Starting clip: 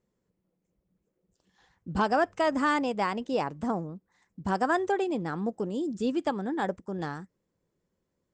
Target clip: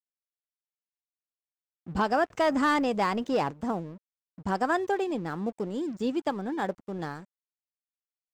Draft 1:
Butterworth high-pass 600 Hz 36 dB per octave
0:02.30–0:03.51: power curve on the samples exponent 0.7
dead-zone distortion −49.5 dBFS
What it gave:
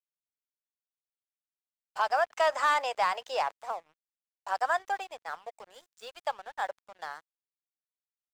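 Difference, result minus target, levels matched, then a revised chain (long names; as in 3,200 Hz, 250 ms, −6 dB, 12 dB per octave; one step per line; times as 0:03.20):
500 Hz band −3.0 dB
0:02.30–0:03.51: power curve on the samples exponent 0.7
dead-zone distortion −49.5 dBFS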